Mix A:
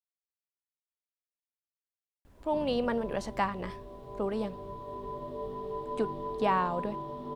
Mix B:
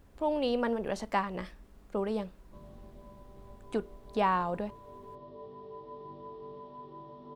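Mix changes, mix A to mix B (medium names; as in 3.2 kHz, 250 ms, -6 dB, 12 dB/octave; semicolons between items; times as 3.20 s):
speech: entry -2.25 s; background -9.0 dB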